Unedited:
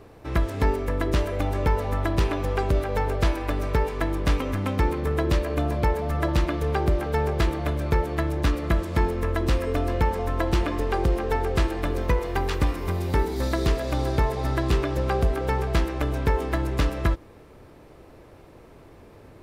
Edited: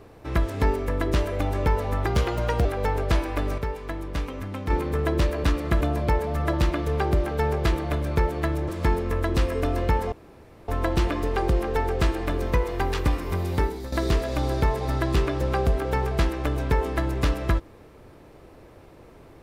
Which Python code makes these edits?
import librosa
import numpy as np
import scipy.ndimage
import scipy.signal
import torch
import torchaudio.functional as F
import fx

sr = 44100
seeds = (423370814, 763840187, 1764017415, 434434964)

y = fx.edit(x, sr, fx.speed_span(start_s=2.06, length_s=0.71, speed=1.2),
    fx.clip_gain(start_s=3.7, length_s=1.12, db=-6.5),
    fx.move(start_s=8.43, length_s=0.37, to_s=5.56),
    fx.insert_room_tone(at_s=10.24, length_s=0.56),
    fx.fade_out_to(start_s=13.12, length_s=0.36, floor_db=-13.0), tone=tone)